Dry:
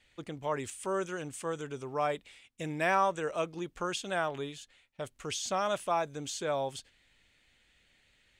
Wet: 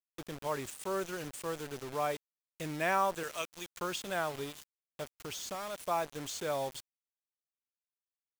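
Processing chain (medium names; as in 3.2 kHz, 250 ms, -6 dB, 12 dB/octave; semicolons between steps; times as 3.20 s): 3.23–3.80 s: tilt shelf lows -10 dB, about 1.4 kHz; 5.03–5.78 s: compression 2.5:1, threshold -38 dBFS, peak gain reduction 8 dB; bit crusher 7-bit; trim -2.5 dB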